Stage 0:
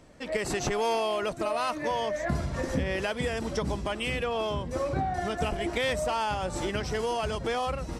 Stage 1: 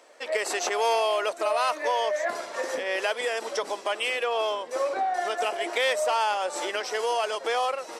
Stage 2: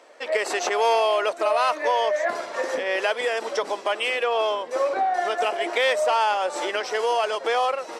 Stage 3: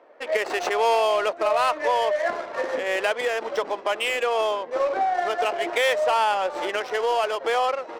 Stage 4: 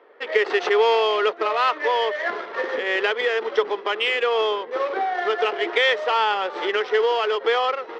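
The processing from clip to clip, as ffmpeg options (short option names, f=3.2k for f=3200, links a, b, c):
-af "highpass=f=450:w=0.5412,highpass=f=450:w=1.3066,volume=4.5dB"
-af "highshelf=f=6.2k:g=-9.5,volume=4dB"
-af "adynamicsmooth=sensitivity=4:basefreq=1.6k"
-af "highpass=190,equalizer=f=280:t=q:w=4:g=-3,equalizer=f=420:t=q:w=4:g=10,equalizer=f=620:t=q:w=4:g=-8,equalizer=f=1.3k:t=q:w=4:g=4,equalizer=f=1.9k:t=q:w=4:g=5,equalizer=f=3.3k:t=q:w=4:g=6,lowpass=f=5.3k:w=0.5412,lowpass=f=5.3k:w=1.3066"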